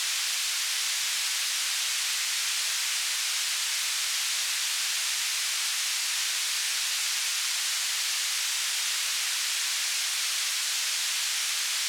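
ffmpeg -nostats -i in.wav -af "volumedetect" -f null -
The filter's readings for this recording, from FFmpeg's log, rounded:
mean_volume: -28.8 dB
max_volume: -15.6 dB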